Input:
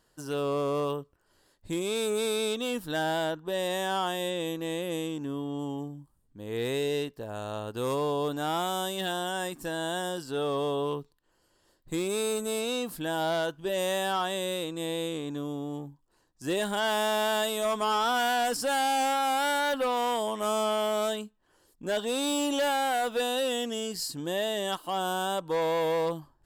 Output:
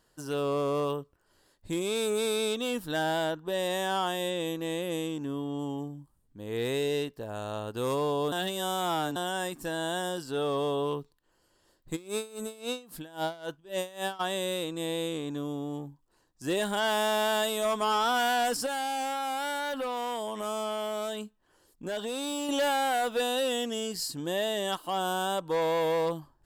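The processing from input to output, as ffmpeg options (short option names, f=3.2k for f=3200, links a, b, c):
-filter_complex "[0:a]asplit=3[a][b][c];[a]afade=t=out:st=11.95:d=0.02[d];[b]aeval=exprs='val(0)*pow(10,-21*(0.5-0.5*cos(2*PI*3.7*n/s))/20)':c=same,afade=t=in:st=11.95:d=0.02,afade=t=out:st=14.19:d=0.02[e];[c]afade=t=in:st=14.19:d=0.02[f];[d][e][f]amix=inputs=3:normalize=0,asettb=1/sr,asplit=3[g][h][i];[g]atrim=end=18.664[j];[h]atrim=start=18.66:end=22.49,asetpts=PTS-STARTPTS,afade=t=in:d=0.004:c=qsin,afade=t=out:st=3.826:d=0.004:c=qsin,acompressor=threshold=-30dB:ratio=6:attack=3.2:release=140:knee=1:detection=peak[k];[i]atrim=start=22.486[l];[j][k]acrossfade=d=0.004:c1=hsin:c2=qsin[m];[m][l]acrossfade=d=0.004:c1=qsin:c2=hsin,asplit=3[n][o][p];[n]atrim=end=8.322[q];[o]atrim=start=8.318:end=9.162,asetpts=PTS-STARTPTS,areverse[r];[p]atrim=start=9.158[s];[q][r]acrossfade=d=0.004:c1=hsin:c2=hsin[t];[t][s]acrossfade=d=0.004:c1=hsin:c2=hsin"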